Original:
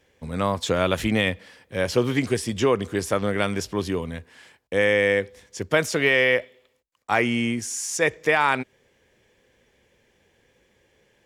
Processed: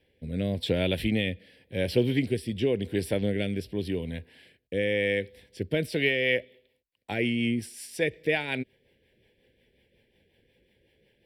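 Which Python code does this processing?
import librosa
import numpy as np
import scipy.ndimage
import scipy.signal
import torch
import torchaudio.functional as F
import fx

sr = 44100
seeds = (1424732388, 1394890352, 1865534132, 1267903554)

y = fx.fixed_phaser(x, sr, hz=2900.0, stages=4)
y = fx.dynamic_eq(y, sr, hz=1000.0, q=1.2, threshold_db=-39.0, ratio=4.0, max_db=-6)
y = fx.rotary_switch(y, sr, hz=0.9, then_hz=5.5, switch_at_s=5.64)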